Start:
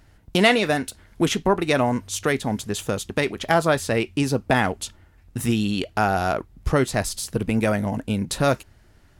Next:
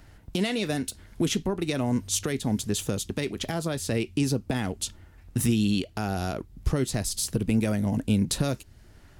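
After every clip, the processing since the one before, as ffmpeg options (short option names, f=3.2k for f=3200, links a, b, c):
-filter_complex "[0:a]alimiter=limit=-15.5dB:level=0:latency=1:release=282,acrossover=split=410|3000[a][b][c];[b]acompressor=threshold=-57dB:ratio=1.5[d];[a][d][c]amix=inputs=3:normalize=0,volume=2.5dB"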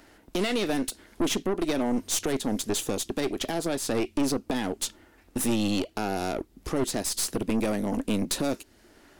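-af "lowshelf=f=190:t=q:w=1.5:g=-14,asoftclip=type=tanh:threshold=-23.5dB,aeval=exprs='0.0668*(cos(1*acos(clip(val(0)/0.0668,-1,1)))-cos(1*PI/2))+0.0188*(cos(2*acos(clip(val(0)/0.0668,-1,1)))-cos(2*PI/2))':c=same,volume=2.5dB"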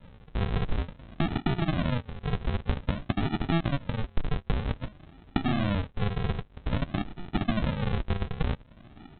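-af "acompressor=threshold=-30dB:ratio=6,aresample=8000,acrusher=samples=21:mix=1:aa=0.000001:lfo=1:lforange=12.6:lforate=0.52,aresample=44100,volume=7dB"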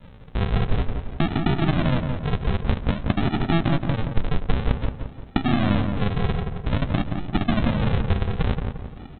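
-filter_complex "[0:a]asplit=2[a][b];[b]adelay=174,lowpass=f=1.7k:p=1,volume=-4.5dB,asplit=2[c][d];[d]adelay=174,lowpass=f=1.7k:p=1,volume=0.46,asplit=2[e][f];[f]adelay=174,lowpass=f=1.7k:p=1,volume=0.46,asplit=2[g][h];[h]adelay=174,lowpass=f=1.7k:p=1,volume=0.46,asplit=2[i][j];[j]adelay=174,lowpass=f=1.7k:p=1,volume=0.46,asplit=2[k][l];[l]adelay=174,lowpass=f=1.7k:p=1,volume=0.46[m];[a][c][e][g][i][k][m]amix=inputs=7:normalize=0,volume=5dB"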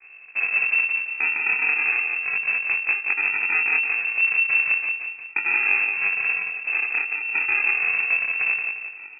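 -af "flanger=delay=19.5:depth=7.7:speed=0.34,acrusher=samples=21:mix=1:aa=0.000001,lowpass=f=2.3k:t=q:w=0.5098,lowpass=f=2.3k:t=q:w=0.6013,lowpass=f=2.3k:t=q:w=0.9,lowpass=f=2.3k:t=q:w=2.563,afreqshift=-2700,volume=1dB"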